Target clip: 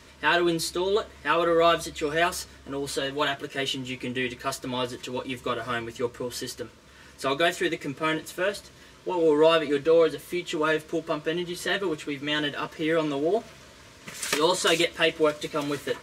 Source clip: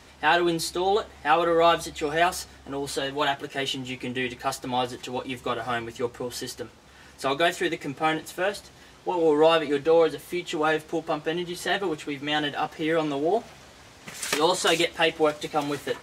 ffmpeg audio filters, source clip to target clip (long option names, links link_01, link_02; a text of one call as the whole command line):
ffmpeg -i in.wav -af "asuperstop=centerf=780:order=8:qfactor=4.2" out.wav